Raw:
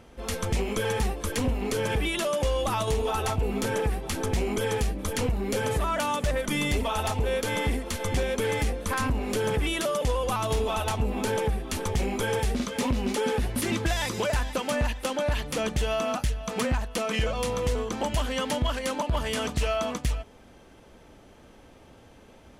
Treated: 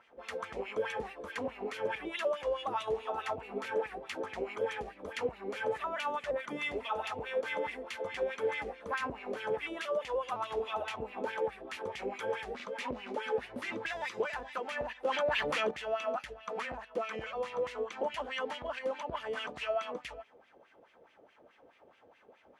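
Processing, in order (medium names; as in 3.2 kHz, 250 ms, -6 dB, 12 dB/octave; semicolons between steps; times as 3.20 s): wah-wah 4.7 Hz 460–2500 Hz, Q 2.5; 15.05–15.71 s: level flattener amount 70%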